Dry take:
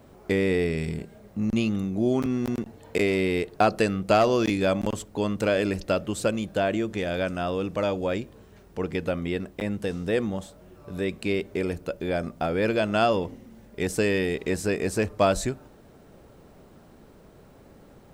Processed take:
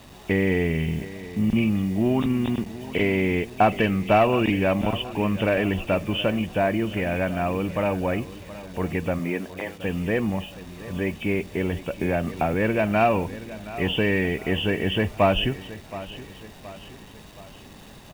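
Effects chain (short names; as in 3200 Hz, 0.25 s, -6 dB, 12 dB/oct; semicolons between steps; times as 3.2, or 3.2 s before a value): nonlinear frequency compression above 2200 Hz 4:1; in parallel at -6.5 dB: soft clip -19.5 dBFS, distortion -14 dB; 9.18–9.83 on the sum: HPF 130 Hz -> 540 Hz 24 dB/oct; bit-crush 8-bit; comb 1.1 ms, depth 36%; on a send: feedback echo 0.722 s, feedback 49%, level -16 dB; 12.01–12.54 on the sum: three-band squash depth 70%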